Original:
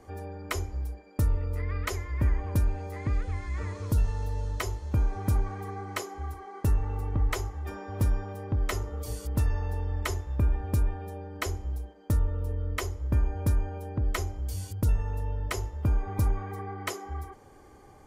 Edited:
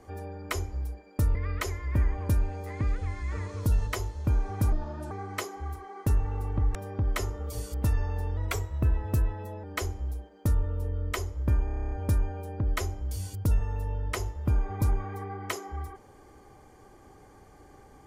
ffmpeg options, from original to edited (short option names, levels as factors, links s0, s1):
-filter_complex "[0:a]asplit=17[s0][s1][s2][s3][s4][s5][s6][s7][s8][s9][s10][s11][s12][s13][s14][s15][s16];[s0]atrim=end=1.352[s17];[s1]atrim=start=1.608:end=4.132[s18];[s2]atrim=start=4.538:end=5.394[s19];[s3]atrim=start=5.39:end=5.69,asetpts=PTS-STARTPTS,asetrate=33957,aresample=44100[s20];[s4]atrim=start=5.686:end=7.332[s21];[s5]atrim=start=8.278:end=9.904[s22];[s6]atrim=start=9.9:end=11.28,asetpts=PTS-STARTPTS,asetrate=48069,aresample=44100,atrim=end_sample=55833,asetpts=PTS-STARTPTS[s23];[s7]atrim=start=11.276:end=13.322[s24];[s8]atrim=start=13.288:end=13.322[s25];[s9]atrim=start=13.288:end=13.322[s26];[s10]atrim=start=13.288:end=13.322[s27];[s11]atrim=start=13.288:end=13.322[s28];[s12]atrim=start=13.288:end=13.322[s29];[s13]atrim=start=13.288:end=13.322[s30];[s14]atrim=start=13.288:end=13.322[s31];[s15]atrim=start=13.288:end=13.322[s32];[s16]atrim=start=13.288[s33];[s17][s18]acrossfade=d=0.004:c1=hsin:c2=hsin[s34];[s34][s19]acrossfade=d=0.004:c1=hsin:c2=hsin[s35];[s35][s20]acrossfade=d=0.004:c1=hsin:c2=hsin[s36];[s36][s21]acrossfade=d=0.004:c1=hsin:c2=hsin[s37];[s37][s22]acrossfade=d=0.004:c1=hsin:c2=hsin[s38];[s38][s23]acrossfade=d=0.004:c1=hsin:c2=hsin[s39];[s39][s24]acrossfade=d=0.004:c1=hsin:c2=hsin[s40];[s40][s25]acrossfade=d=0.004:c1=hsin:c2=hsin[s41];[s41][s26]acrossfade=d=0.004:c1=hsin:c2=hsin[s42];[s42][s27]acrossfade=d=0.004:c1=hsin:c2=hsin[s43];[s43][s28]acrossfade=d=0.004:c1=hsin:c2=hsin[s44];[s44][s29]acrossfade=d=0.004:c1=hsin:c2=hsin[s45];[s45][s30]acrossfade=d=0.004:c1=hsin:c2=hsin[s46];[s46][s31]acrossfade=d=0.004:c1=hsin:c2=hsin[s47];[s47][s32]acrossfade=d=0.004:c1=hsin:c2=hsin[s48];[s48][s33]acrossfade=d=0.004:c1=hsin:c2=hsin"